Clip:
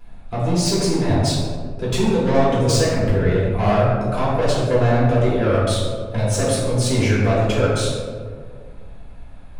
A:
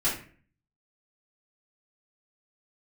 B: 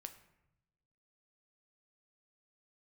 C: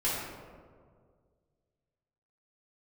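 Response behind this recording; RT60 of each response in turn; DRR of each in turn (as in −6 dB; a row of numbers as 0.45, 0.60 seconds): C; 0.45, 0.85, 1.9 seconds; −11.0, 7.0, −9.0 decibels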